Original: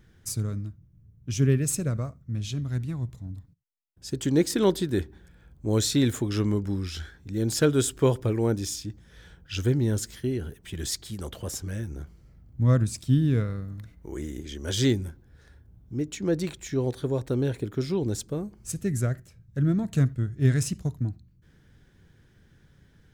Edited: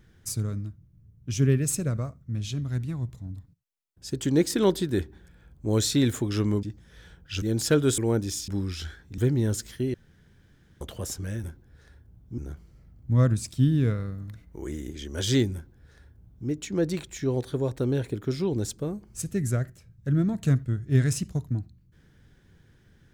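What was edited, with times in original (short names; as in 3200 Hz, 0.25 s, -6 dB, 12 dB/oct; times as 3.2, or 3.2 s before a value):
6.63–7.33 swap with 8.83–9.62
7.89–8.33 cut
10.38–11.25 room tone
15.04–15.98 copy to 11.88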